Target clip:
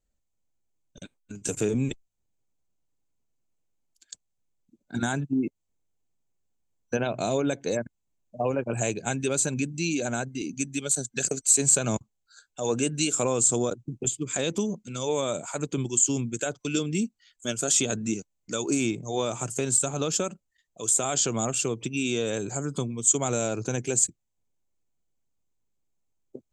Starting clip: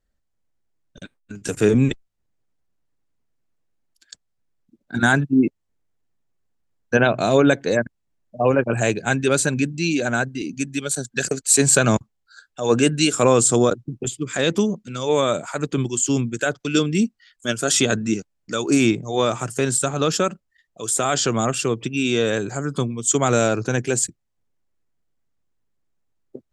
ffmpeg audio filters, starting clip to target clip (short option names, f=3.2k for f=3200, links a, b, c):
-af "acompressor=threshold=-20dB:ratio=2.5,superequalizer=10b=0.631:11b=0.501:15b=2.24,volume=-4.5dB"